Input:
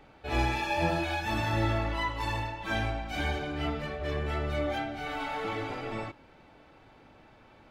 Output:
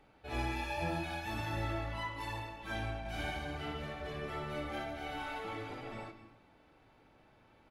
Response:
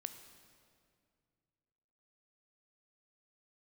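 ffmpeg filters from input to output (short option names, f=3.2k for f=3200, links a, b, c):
-filter_complex "[0:a]equalizer=f=11k:w=4.5:g=11,asplit=3[a][b][c];[a]afade=t=out:st=3.04:d=0.02[d];[b]aecho=1:1:60|144|261.6|426.2|656.7:0.631|0.398|0.251|0.158|0.1,afade=t=in:st=3.04:d=0.02,afade=t=out:st=5.39:d=0.02[e];[c]afade=t=in:st=5.39:d=0.02[f];[d][e][f]amix=inputs=3:normalize=0[g];[1:a]atrim=start_sample=2205,afade=t=out:st=0.36:d=0.01,atrim=end_sample=16317[h];[g][h]afir=irnorm=-1:irlink=0,volume=-5dB"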